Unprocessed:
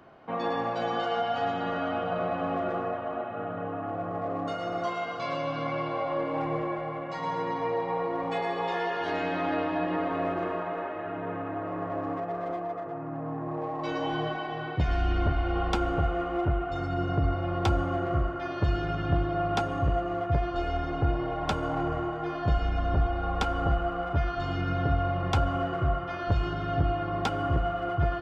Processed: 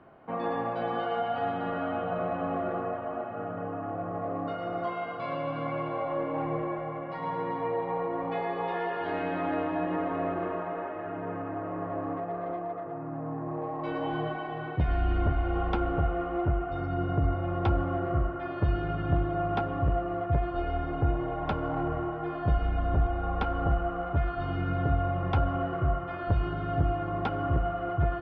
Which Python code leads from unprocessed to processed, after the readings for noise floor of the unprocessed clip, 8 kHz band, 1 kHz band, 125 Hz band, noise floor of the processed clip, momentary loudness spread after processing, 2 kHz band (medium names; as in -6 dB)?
-35 dBFS, no reading, -1.5 dB, 0.0 dB, -37 dBFS, 7 LU, -3.0 dB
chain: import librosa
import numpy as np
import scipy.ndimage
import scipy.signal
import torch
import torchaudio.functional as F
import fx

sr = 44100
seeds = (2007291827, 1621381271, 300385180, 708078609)

y = fx.air_absorb(x, sr, metres=380.0)